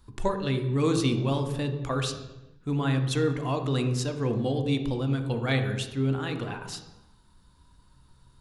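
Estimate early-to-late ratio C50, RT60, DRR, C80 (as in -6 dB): 8.0 dB, 1.0 s, 5.5 dB, 10.0 dB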